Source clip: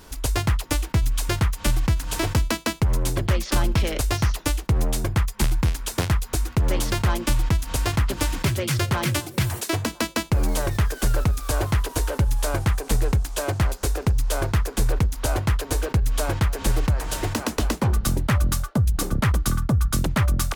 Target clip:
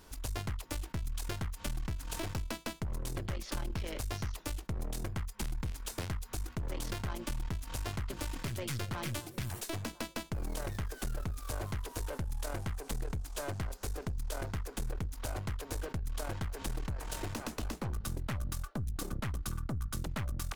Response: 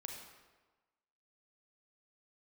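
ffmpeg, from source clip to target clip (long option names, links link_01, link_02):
-af "acompressor=threshold=-22dB:ratio=6,aeval=exprs='(tanh(14.1*val(0)+0.6)-tanh(0.6))/14.1':channel_layout=same,volume=-7.5dB"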